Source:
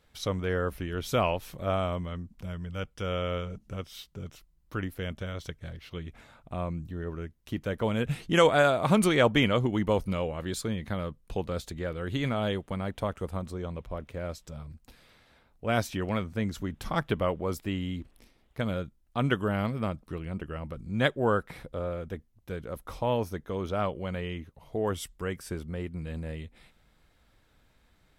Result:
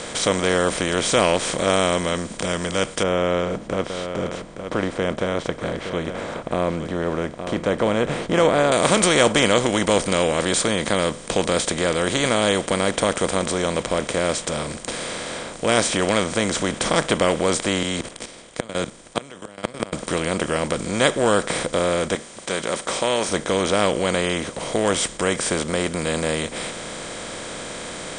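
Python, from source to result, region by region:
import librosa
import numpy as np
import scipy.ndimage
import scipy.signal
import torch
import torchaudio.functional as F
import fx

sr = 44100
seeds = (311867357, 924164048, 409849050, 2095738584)

y = fx.chain(x, sr, fx.lowpass(hz=1000.0, slope=12),
    fx.echo_single(ms=867, db=-21.0), at=(3.03, 8.72))
y = fx.chain(y, sr, fx.gate_flip(shuts_db=-18.0, range_db=-37),
    fx.level_steps(step_db=19),
    fx.band_widen(depth_pct=100), at=(17.83, 19.93))
y = fx.chain(y, sr, fx.highpass(hz=1000.0, slope=6),
    fx.comb(ms=5.2, depth=0.36), at=(22.15, 23.29))
y = fx.bin_compress(y, sr, power=0.4)
y = scipy.signal.sosfilt(scipy.signal.butter(16, 9100.0, 'lowpass', fs=sr, output='sos'), y)
y = fx.bass_treble(y, sr, bass_db=-6, treble_db=12)
y = F.gain(torch.from_numpy(y), 2.0).numpy()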